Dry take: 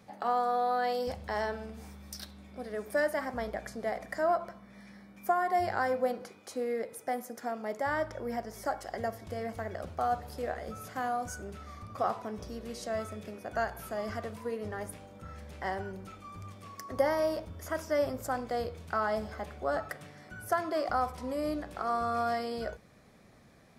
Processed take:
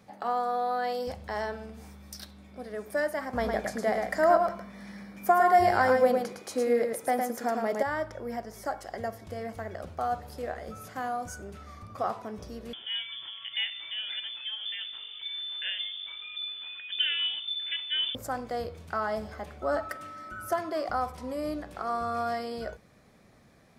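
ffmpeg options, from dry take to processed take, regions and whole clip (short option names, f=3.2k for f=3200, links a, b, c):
-filter_complex "[0:a]asettb=1/sr,asplit=3[a][b][c];[a]atrim=end=3.334[d];[b]atrim=start=3.33:end=7.83,asetpts=PTS-STARTPTS,afade=t=in:d=0.004:c=qsin,afade=t=out:st=4.496:d=0.004:c=qsin,acontrast=46,aecho=1:1:109:0.596,atrim=end_sample=198450[e];[c]atrim=start=7.826[f];[d][e]acrossfade=d=0.004:c1=hsin:c2=qsin[g];[g][f]acrossfade=d=0.004:c1=qsin:c2=hsin,asettb=1/sr,asplit=3[h][i][j];[h]atrim=end=12.734[k];[i]atrim=start=12.73:end=18.15,asetpts=PTS-STARTPTS,afade=t=in:d=0.004:c=qsin,afade=t=out:st=5.416:d=0.004:c=qsin,asubboost=boost=7.5:cutoff=96,acompressor=mode=upward:threshold=-35dB:ratio=2.5:attack=3.2:release=140:knee=2.83:detection=peak,lowpass=f=3.1k:t=q:w=0.5098,lowpass=f=3.1k:t=q:w=0.6013,lowpass=f=3.1k:t=q:w=0.9,lowpass=f=3.1k:t=q:w=2.563,afreqshift=-3600[l];[j]atrim=start=18.146[m];[k][l]acrossfade=d=0.004:c1=hsin:c2=qsin[n];[n][m]acrossfade=d=0.004:c1=qsin:c2=hsin,asettb=1/sr,asplit=3[o][p][q];[o]atrim=end=19.624[r];[p]atrim=start=19.62:end=20.59,asetpts=PTS-STARTPTS,afade=t=in:d=0.004:c=qsin,afade=t=out:st=0.966:d=0.004:c=qsin,aecho=1:1:3.3:0.67,atrim=end_sample=42777,aeval=exprs='val(0)+0.00891*sin(2*PI*1300*n/s)':c=same[s];[q]atrim=start=20.586[t];[r][s]acrossfade=d=0.004:c1=hsin:c2=qsin[u];[u][t]acrossfade=d=0.004:c1=qsin:c2=hsin"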